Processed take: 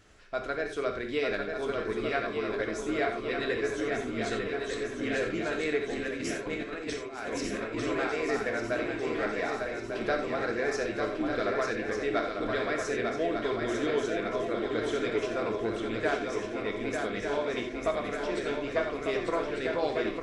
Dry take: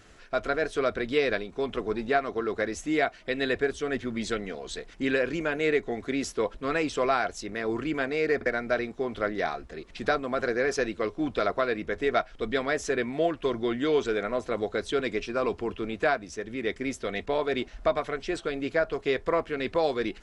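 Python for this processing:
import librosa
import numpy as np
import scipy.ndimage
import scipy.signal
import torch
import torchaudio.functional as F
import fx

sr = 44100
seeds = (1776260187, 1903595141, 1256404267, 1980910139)

y = fx.echo_swing(x, sr, ms=1198, ratio=3, feedback_pct=56, wet_db=-4.5)
y = fx.over_compress(y, sr, threshold_db=-29.0, ratio=-0.5, at=(6.02, 7.85))
y = fx.rev_gated(y, sr, seeds[0], gate_ms=110, shape='flat', drr_db=3.5)
y = F.gain(torch.from_numpy(y), -6.0).numpy()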